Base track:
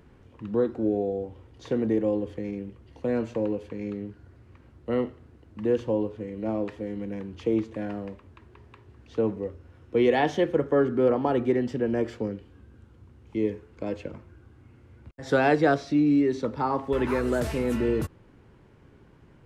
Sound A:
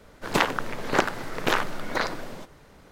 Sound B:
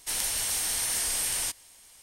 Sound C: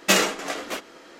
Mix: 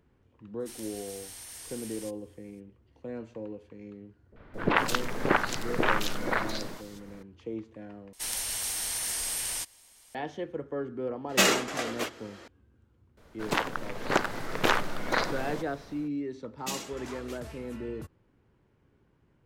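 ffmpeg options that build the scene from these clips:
-filter_complex "[2:a]asplit=2[s0][s1];[1:a]asplit=2[s2][s3];[3:a]asplit=2[s4][s5];[0:a]volume=0.251[s6];[s2]acrossover=split=650|3100[s7][s8][s9];[s8]adelay=40[s10];[s9]adelay=220[s11];[s7][s10][s11]amix=inputs=3:normalize=0[s12];[s4]asoftclip=type=tanh:threshold=0.422[s13];[s3]dynaudnorm=f=190:g=5:m=3.76[s14];[s5]acrossover=split=310|3000[s15][s16][s17];[s16]acompressor=threshold=0.0224:ratio=6:attack=3.2:release=140:knee=2.83:detection=peak[s18];[s15][s18][s17]amix=inputs=3:normalize=0[s19];[s6]asplit=2[s20][s21];[s20]atrim=end=8.134[s22];[s1]atrim=end=2.02,asetpts=PTS-STARTPTS,volume=0.668[s23];[s21]atrim=start=10.146[s24];[s0]atrim=end=2.02,asetpts=PTS-STARTPTS,volume=0.158,afade=t=in:d=0.02,afade=t=out:st=2:d=0.02,adelay=590[s25];[s12]atrim=end=2.91,asetpts=PTS-STARTPTS,afade=t=in:d=0.004:c=hsin,afade=t=out:st=2.906:d=0.004:c=hsin,adelay=4320[s26];[s13]atrim=end=1.19,asetpts=PTS-STARTPTS,volume=0.75,afade=t=in:d=0.004:c=hsin,afade=t=out:st=1.186:d=0.004:c=hsin,adelay=11290[s27];[s14]atrim=end=2.91,asetpts=PTS-STARTPTS,volume=0.501,afade=t=in:d=0.004:c=hsin,afade=t=out:st=2.906:d=0.004:c=hsin,adelay=13170[s28];[s19]atrim=end=1.19,asetpts=PTS-STARTPTS,volume=0.211,afade=t=in:d=0.004:c=hsin,afade=t=out:st=1.186:d=0.004:c=hsin,adelay=16580[s29];[s22][s23]acrossfade=d=0.004:c1=hsin:c2=hsin[s30];[s30][s24]acrossfade=d=0.004:c1=hsin:c2=hsin[s31];[s31][s25][s26][s27][s28][s29]amix=inputs=6:normalize=0"

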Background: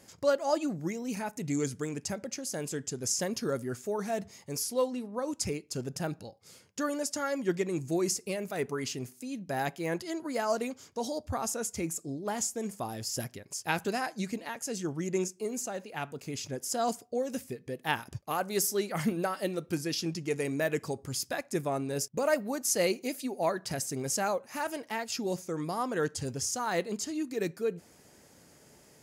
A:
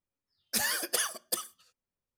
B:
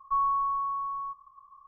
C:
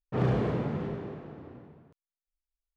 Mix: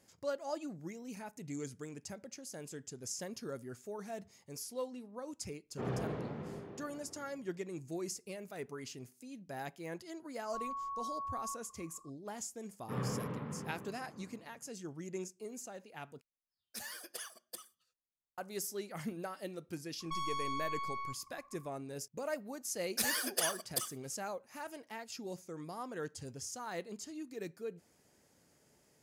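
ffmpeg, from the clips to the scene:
-filter_complex "[3:a]asplit=2[s0][s1];[2:a]asplit=2[s2][s3];[1:a]asplit=2[s4][s5];[0:a]volume=0.282[s6];[s0]equalizer=f=71:w=0.42:g=-4.5[s7];[s2]alimiter=level_in=2.11:limit=0.0631:level=0:latency=1:release=71,volume=0.473[s8];[s1]highpass=120,equalizer=f=360:t=q:w=4:g=-8,equalizer=f=690:t=q:w=4:g=-8,equalizer=f=1100:t=q:w=4:g=6,lowpass=f=3700:w=0.5412,lowpass=f=3700:w=1.3066[s9];[s3]aeval=exprs='(tanh(63.1*val(0)+0.8)-tanh(0.8))/63.1':c=same[s10];[s6]asplit=2[s11][s12];[s11]atrim=end=16.214[s13];[s4]atrim=end=2.17,asetpts=PTS-STARTPTS,volume=0.168[s14];[s12]atrim=start=18.376[s15];[s7]atrim=end=2.76,asetpts=PTS-STARTPTS,volume=0.355,afade=t=in:d=0.004:c=hsin,afade=t=out:st=2.756:d=0.004:c=hsin,adelay=249165S[s16];[s8]atrim=end=1.67,asetpts=PTS-STARTPTS,volume=0.447,afade=t=in:d=0.004:c=hsin,afade=t=out:st=1.666:d=0.004:c=hsin,adelay=10430[s17];[s9]atrim=end=2.76,asetpts=PTS-STARTPTS,volume=0.376,afade=t=in:d=0.004:c=hsin,afade=t=out:st=2.756:d=0.004:c=hsin,adelay=12760[s18];[s10]atrim=end=1.67,asetpts=PTS-STARTPTS,volume=0.841,afade=t=in:d=0.004:c=hsin,afade=t=out:st=1.666:d=0.004:c=hsin,adelay=20000[s19];[s5]atrim=end=2.17,asetpts=PTS-STARTPTS,volume=0.631,afade=t=in:d=0.004:c=hsin,afade=t=out:st=2.166:d=0.004:c=hsin,adelay=989604S[s20];[s13][s14]acrossfade=d=0.004:c1=hsin:c2=hsin[s21];[s21][s15]acrossfade=d=0.004:c1=hsin:c2=hsin[s22];[s22][s16][s17][s18][s19][s20]amix=inputs=6:normalize=0"

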